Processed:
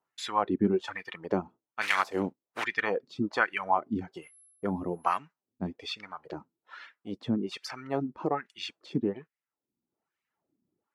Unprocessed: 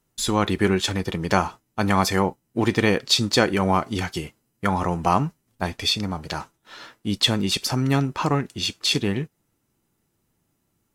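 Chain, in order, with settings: 1.81–2.63 s: spectral contrast reduction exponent 0.44; reverb removal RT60 0.85 s; 4.21–5.16 s: whistle 11 kHz -33 dBFS; wah-wah 1.2 Hz 230–2200 Hz, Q 2.3; trim +1 dB

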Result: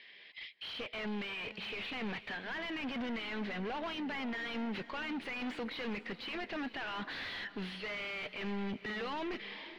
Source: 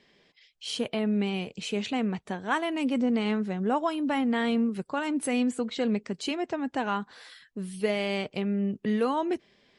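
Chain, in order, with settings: high-pass 950 Hz 6 dB/octave; high-order bell 2.9 kHz +11 dB; reverse; compression 5:1, threshold -36 dBFS, peak gain reduction 15 dB; reverse; peak limiter -30.5 dBFS, peak gain reduction 7.5 dB; level rider gain up to 14 dB; hard clipper -36.5 dBFS, distortion -3 dB; distance through air 300 m; on a send: echo that smears into a reverb 474 ms, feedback 41%, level -15 dB; on the sum: tape noise reduction on one side only encoder only; trim +1 dB

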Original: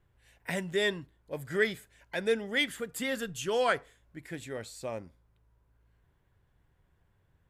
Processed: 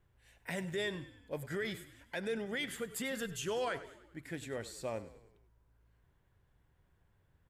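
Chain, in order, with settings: peak limiter -26 dBFS, peak gain reduction 11.5 dB; frequency-shifting echo 99 ms, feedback 53%, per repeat -35 Hz, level -15.5 dB; trim -2 dB

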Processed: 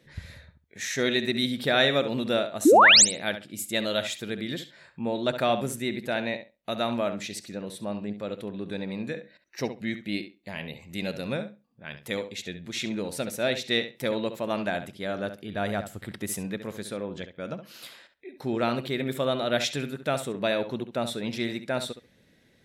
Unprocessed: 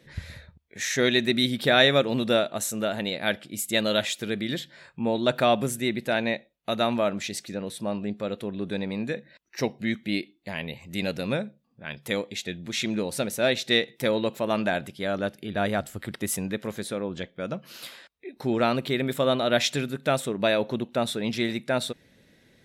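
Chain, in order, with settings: painted sound rise, 2.65–3.05 s, 260–9300 Hz -11 dBFS; filtered feedback delay 68 ms, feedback 16%, low-pass 4.8 kHz, level -10.5 dB; trim -3.5 dB

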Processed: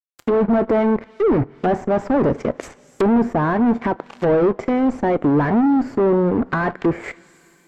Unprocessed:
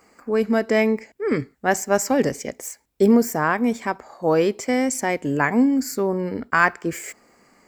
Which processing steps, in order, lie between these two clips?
fuzz box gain 30 dB, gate -38 dBFS; two-slope reverb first 0.22 s, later 3.3 s, from -22 dB, DRR 16.5 dB; low-pass that closes with the level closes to 970 Hz, closed at -15.5 dBFS

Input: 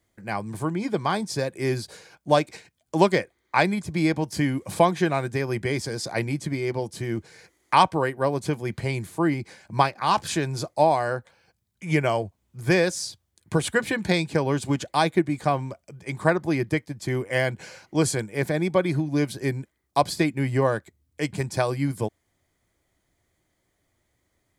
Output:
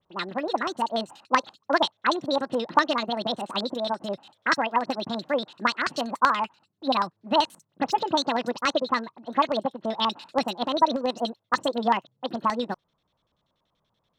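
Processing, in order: phase dispersion highs, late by 91 ms, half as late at 2.9 kHz; LFO low-pass square 6 Hz 570–2400 Hz; speed mistake 45 rpm record played at 78 rpm; trim -3.5 dB

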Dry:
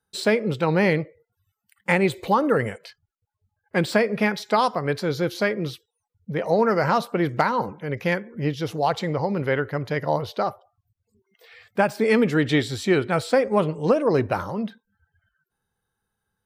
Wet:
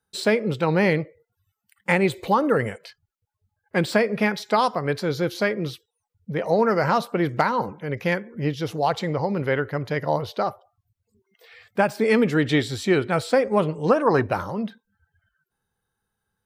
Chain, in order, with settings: time-frequency box 13.92–14.23 s, 700–1900 Hz +8 dB

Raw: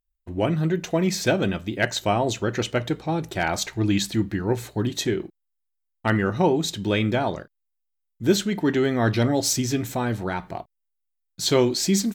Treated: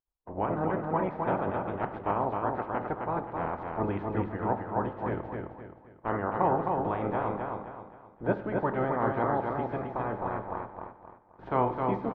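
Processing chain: spectral peaks clipped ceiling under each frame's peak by 23 dB; four-pole ladder low-pass 1.2 kHz, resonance 35%; feedback delay 262 ms, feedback 37%, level -4 dB; on a send at -13.5 dB: reverberation RT60 0.70 s, pre-delay 57 ms

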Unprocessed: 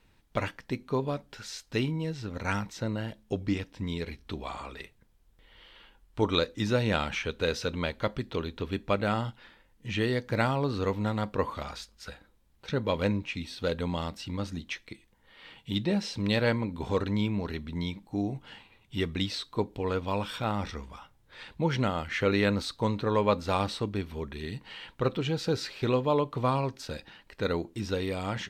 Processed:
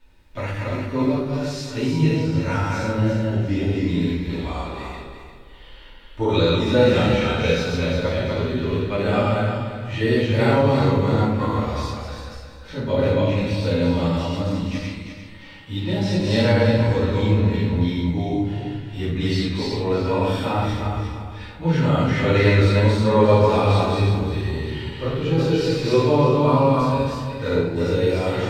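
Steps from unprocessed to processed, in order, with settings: backward echo that repeats 174 ms, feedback 54%, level -1.5 dB; harmonic-percussive split percussive -11 dB; reverberation RT60 0.75 s, pre-delay 3 ms, DRR -9 dB

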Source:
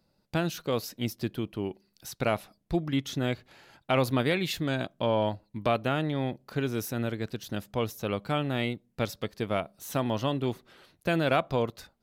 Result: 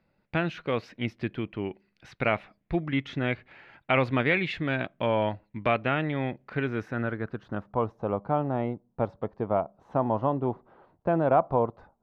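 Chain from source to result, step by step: low-pass sweep 2.2 kHz -> 910 Hz, 6.47–8.03 s

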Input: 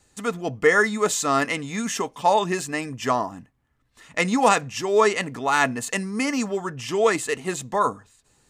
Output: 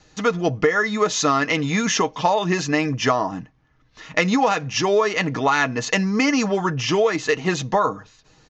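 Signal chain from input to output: steep low-pass 6.5 kHz 72 dB/octave; comb 6.4 ms, depth 40%; compression 16:1, threshold -23 dBFS, peak gain reduction 14.5 dB; trim +8.5 dB

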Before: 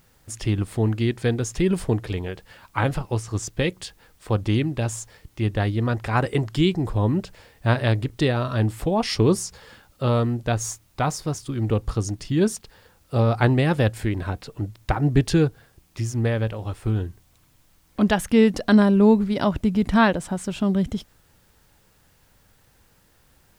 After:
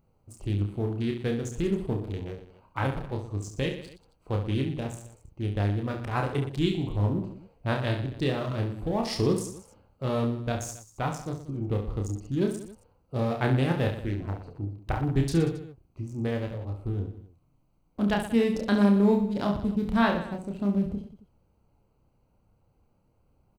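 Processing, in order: local Wiener filter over 25 samples; treble shelf 10 kHz +10 dB; reverse bouncing-ball echo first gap 30 ms, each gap 1.3×, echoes 5; trim -7.5 dB

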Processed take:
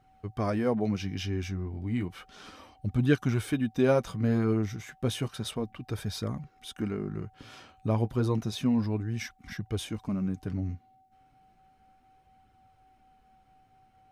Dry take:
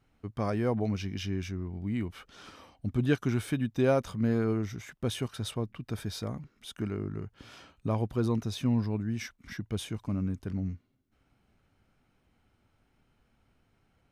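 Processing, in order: whistle 760 Hz -62 dBFS; flange 0.32 Hz, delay 0.5 ms, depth 8.9 ms, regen -43%; trim +5.5 dB

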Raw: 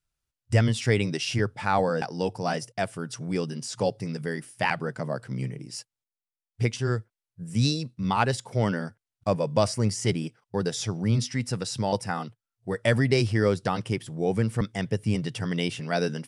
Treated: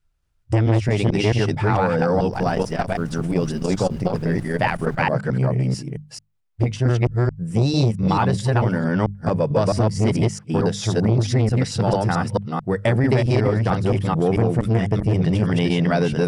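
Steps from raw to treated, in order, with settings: chunks repeated in reverse 221 ms, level 0 dB; treble shelf 3.3 kHz -10 dB; hum notches 50/100/150/200 Hz; compression, threshold -22 dBFS, peak gain reduction 8.5 dB; bass shelf 100 Hz +10.5 dB; 2.32–5.01 s: added noise brown -42 dBFS; transformer saturation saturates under 460 Hz; trim +8 dB

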